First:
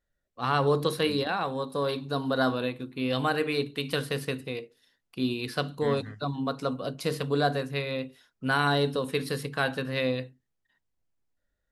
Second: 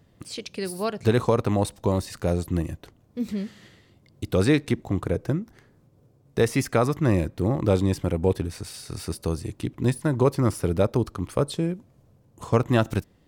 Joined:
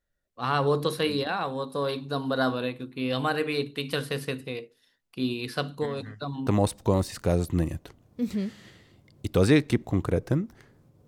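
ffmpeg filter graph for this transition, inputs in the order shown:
-filter_complex "[0:a]asettb=1/sr,asplit=3[a][b][c];[a]atrim=end=5.854[d];[b]atrim=start=5.85:end=6.47,asetpts=PTS-STARTPTS,afade=t=in:d=0.004:c=qsin,afade=t=out:st=0.616:d=0.004:c=qsin,acompressor=threshold=-28dB:ratio=5:attack=3.2:release=140:knee=1:detection=peak[e];[c]atrim=start=6.466[f];[d][e]acrossfade=d=0.004:c1=hsin:c2=qsin[g];[g][f]acrossfade=d=0.004:c1=qsin:c2=hsin,apad=whole_dur=11.07,atrim=end=11.07,atrim=end=6.472[h];[1:a]atrim=start=1.448:end=6.05[i];[h][i]acrossfade=d=0.004:c1=hsin:c2=hsin"

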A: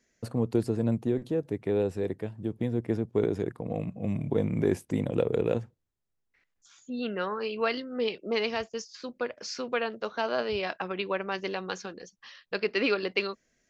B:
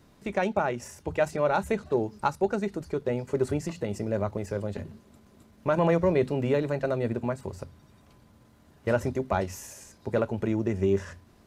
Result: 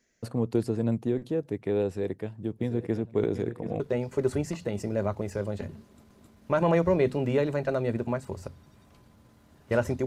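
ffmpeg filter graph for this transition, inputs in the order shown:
-filter_complex "[0:a]asplit=3[a][b][c];[a]afade=t=out:st=2.6:d=0.02[d];[b]aecho=1:1:734|1468|2202|2936:0.282|0.11|0.0429|0.0167,afade=t=in:st=2.6:d=0.02,afade=t=out:st=3.8:d=0.02[e];[c]afade=t=in:st=3.8:d=0.02[f];[d][e][f]amix=inputs=3:normalize=0,apad=whole_dur=10.06,atrim=end=10.06,atrim=end=3.802[g];[1:a]atrim=start=2.958:end=9.22[h];[g][h]acrossfade=d=0.004:c1=hsin:c2=hsin"

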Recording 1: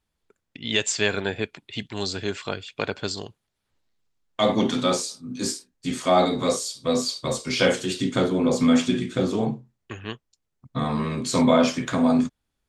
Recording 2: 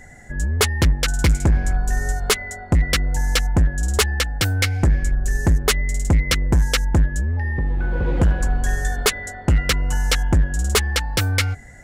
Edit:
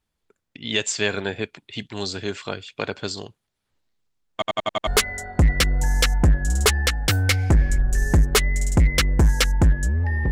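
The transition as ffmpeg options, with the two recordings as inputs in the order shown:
-filter_complex "[0:a]apad=whole_dur=10.31,atrim=end=10.31,asplit=6[a][b][c][d][e][f];[a]atrim=end=4.422[g];[b]atrim=start=4.328:end=4.422[h];[c]atrim=start=4.328:end=4.422[i];[d]atrim=start=4.328:end=4.422[j];[e]atrim=start=4.328:end=4.422[k];[f]atrim=start=4.328:end=4.422[l];[1:a]atrim=start=2.198:end=7.64[m];[g][h]acrossfade=d=0.004:c1=hsin:c2=hsin[n];[n][i]acrossfade=d=0.004:c1=hsin:c2=hsin[o];[o][j]acrossfade=d=0.004:c1=hsin:c2=hsin[p];[p][k]acrossfade=d=0.004:c1=hsin:c2=hsin[q];[q][l]acrossfade=d=0.004:c1=hsin:c2=hsin[r];[r][m]acrossfade=d=0.004:c1=hsin:c2=hsin"

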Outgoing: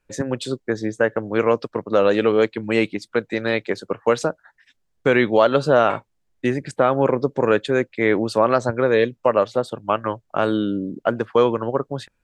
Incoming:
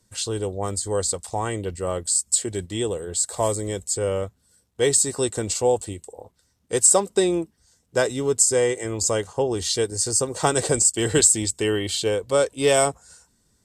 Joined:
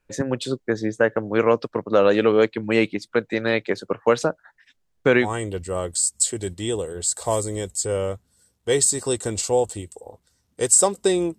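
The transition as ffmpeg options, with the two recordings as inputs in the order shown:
-filter_complex "[0:a]apad=whole_dur=11.38,atrim=end=11.38,atrim=end=5.31,asetpts=PTS-STARTPTS[a];[1:a]atrim=start=1.29:end=7.5,asetpts=PTS-STARTPTS[b];[a][b]acrossfade=d=0.14:c1=tri:c2=tri"

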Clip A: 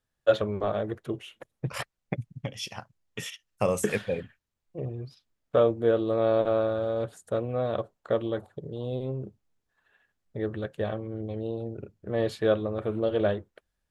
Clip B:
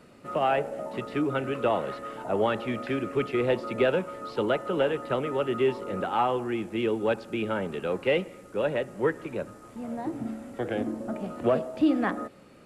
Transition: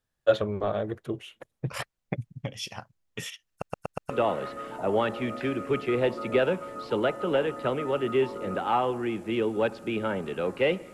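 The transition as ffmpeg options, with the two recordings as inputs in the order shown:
-filter_complex "[0:a]apad=whole_dur=10.93,atrim=end=10.93,asplit=5[a][b][c][d][e];[a]atrim=end=3.622[f];[b]atrim=start=3.498:end=3.622[g];[c]atrim=start=3.498:end=3.622[h];[d]atrim=start=3.498:end=3.622[i];[e]atrim=start=3.498:end=3.622[j];[1:a]atrim=start=1.558:end=8.39[k];[f][g]acrossfade=d=0.004:c1=hsin:c2=hsin[l];[l][h]acrossfade=d=0.004:c1=hsin:c2=hsin[m];[m][i]acrossfade=d=0.004:c1=hsin:c2=hsin[n];[n][j]acrossfade=d=0.004:c1=hsin:c2=hsin[o];[o][k]acrossfade=d=0.004:c1=hsin:c2=hsin"

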